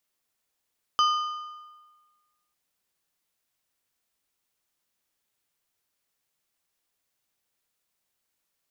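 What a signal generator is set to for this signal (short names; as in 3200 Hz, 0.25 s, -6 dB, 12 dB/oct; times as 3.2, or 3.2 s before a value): metal hit plate, lowest mode 1220 Hz, modes 4, decay 1.42 s, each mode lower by 7 dB, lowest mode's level -17.5 dB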